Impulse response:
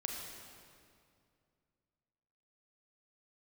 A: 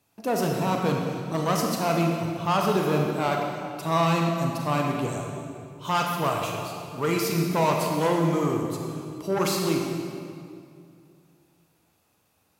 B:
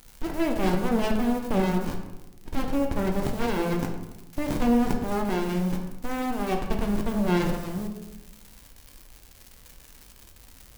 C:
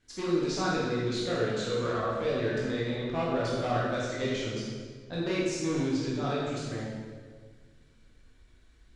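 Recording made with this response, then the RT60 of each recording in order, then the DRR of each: A; 2.3, 1.0, 1.7 seconds; 0.5, 2.0, −7.5 decibels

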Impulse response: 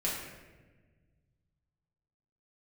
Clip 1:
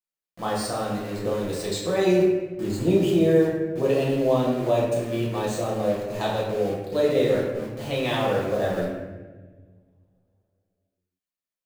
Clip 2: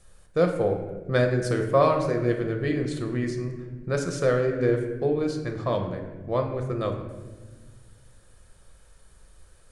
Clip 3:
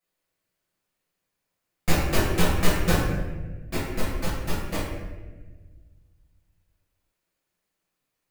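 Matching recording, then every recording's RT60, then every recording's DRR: 1; 1.3, 1.4, 1.3 seconds; −6.0, 3.0, −10.5 decibels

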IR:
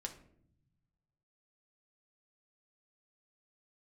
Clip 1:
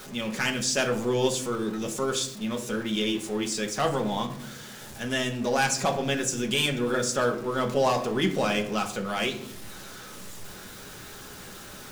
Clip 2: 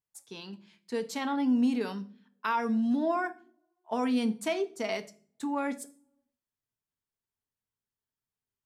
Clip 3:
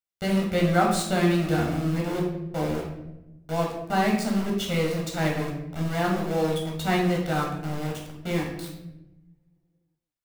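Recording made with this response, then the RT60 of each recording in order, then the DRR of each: 1; 0.65, 0.45, 0.95 seconds; 2.5, 8.5, −2.0 decibels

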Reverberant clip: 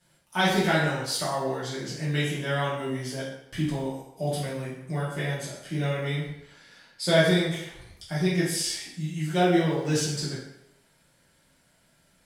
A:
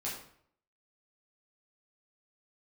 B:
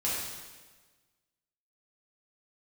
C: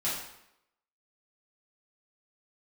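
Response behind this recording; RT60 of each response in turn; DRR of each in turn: C; 0.60, 1.4, 0.80 seconds; −7.0, −8.5, −9.5 decibels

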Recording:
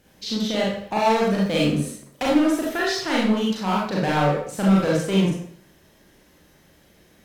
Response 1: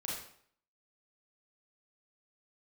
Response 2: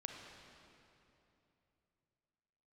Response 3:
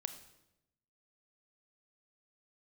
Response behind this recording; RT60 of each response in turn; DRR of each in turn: 1; 0.60, 3.0, 0.90 seconds; −5.0, 2.0, 9.0 decibels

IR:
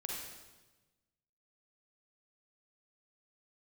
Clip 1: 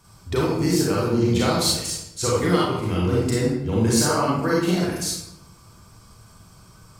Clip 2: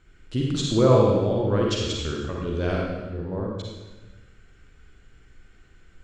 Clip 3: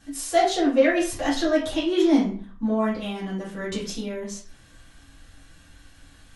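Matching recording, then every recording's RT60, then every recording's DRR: 2; 0.80, 1.2, 0.45 seconds; −5.0, −2.5, −10.0 decibels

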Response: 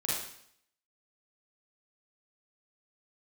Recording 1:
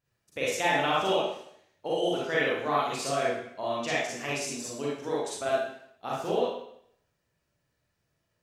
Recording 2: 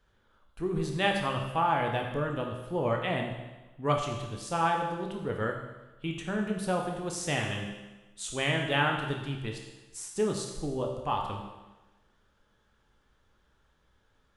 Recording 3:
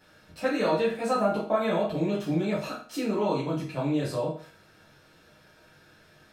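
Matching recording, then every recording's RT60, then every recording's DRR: 1; 0.65, 1.1, 0.45 seconds; −7.0, 1.5, −7.5 decibels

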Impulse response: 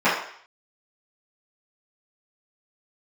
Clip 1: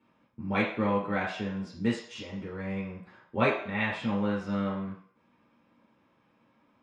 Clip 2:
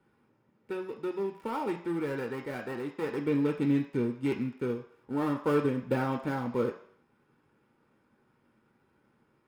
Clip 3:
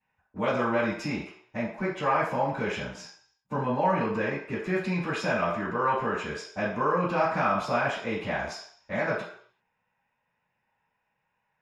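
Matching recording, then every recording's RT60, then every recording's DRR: 3; 0.55, 0.55, 0.55 seconds; −5.0, 3.5, −14.5 decibels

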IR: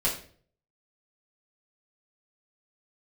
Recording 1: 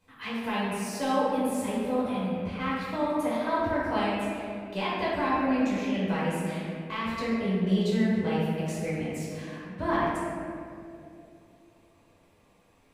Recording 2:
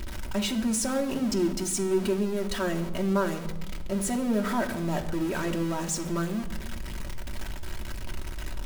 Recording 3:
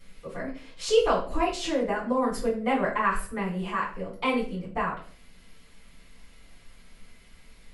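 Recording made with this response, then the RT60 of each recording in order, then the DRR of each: 3; 2.7, 1.1, 0.50 seconds; −9.5, 1.5, −9.0 decibels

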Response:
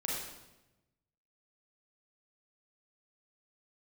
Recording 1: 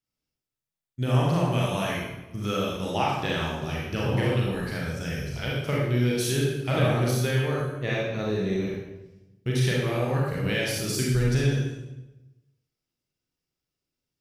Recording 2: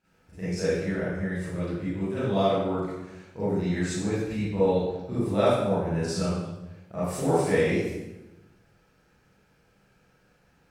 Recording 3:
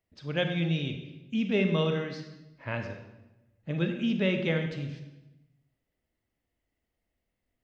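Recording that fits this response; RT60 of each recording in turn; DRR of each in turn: 1; 1.0, 1.0, 1.0 seconds; −4.5, −13.0, 5.0 decibels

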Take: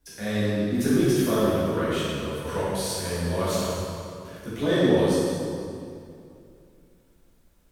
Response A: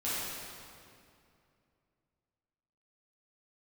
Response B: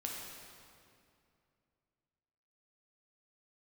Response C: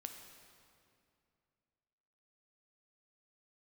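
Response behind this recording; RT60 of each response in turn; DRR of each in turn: A; 2.5, 2.5, 2.5 seconds; −11.0, −2.0, 4.5 decibels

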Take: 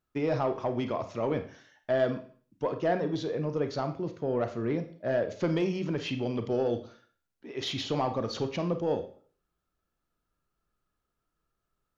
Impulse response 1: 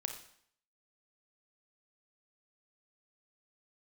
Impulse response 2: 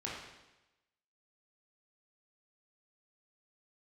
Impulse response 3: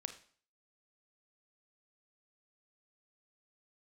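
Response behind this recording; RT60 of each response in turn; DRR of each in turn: 3; 0.65, 1.0, 0.50 seconds; 4.5, −5.5, 7.5 decibels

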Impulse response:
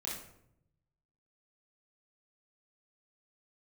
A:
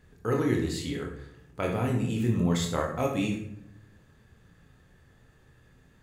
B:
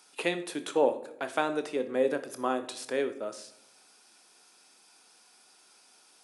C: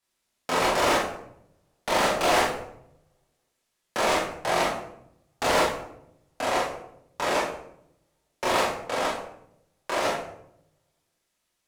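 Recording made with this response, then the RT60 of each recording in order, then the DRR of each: C; 0.75, 0.75, 0.75 seconds; 0.0, 9.0, −6.0 decibels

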